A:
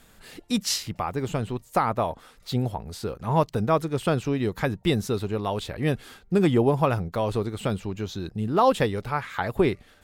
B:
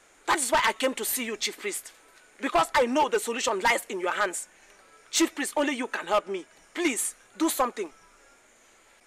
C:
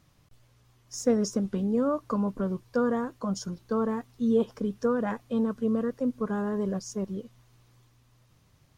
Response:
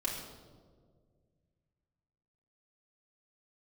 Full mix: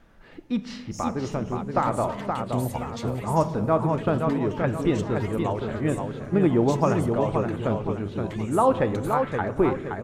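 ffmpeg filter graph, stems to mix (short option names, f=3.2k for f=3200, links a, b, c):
-filter_complex "[0:a]lowpass=1.8k,volume=-2dB,asplit=3[a][b][c];[b]volume=-11.5dB[d];[c]volume=-3.5dB[e];[1:a]acompressor=threshold=-33dB:ratio=12,adelay=1550,volume=-7dB,asplit=3[f][g][h];[g]volume=-17dB[i];[h]volume=-18.5dB[j];[2:a]acompressor=threshold=-29dB:ratio=6,volume=-9.5dB,asplit=3[k][l][m];[l]volume=-5dB[n];[m]volume=-13dB[o];[3:a]atrim=start_sample=2205[p];[d][i][n]amix=inputs=3:normalize=0[q];[q][p]afir=irnorm=-1:irlink=0[r];[e][j][o]amix=inputs=3:normalize=0,aecho=0:1:523|1046|1569|2092|2615:1|0.39|0.152|0.0593|0.0231[s];[a][f][k][r][s]amix=inputs=5:normalize=0"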